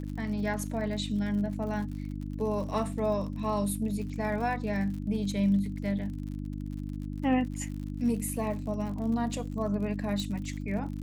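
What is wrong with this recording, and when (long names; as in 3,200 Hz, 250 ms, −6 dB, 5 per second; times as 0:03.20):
surface crackle 69 per second −39 dBFS
mains hum 50 Hz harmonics 6 −36 dBFS
0:10.20: click −22 dBFS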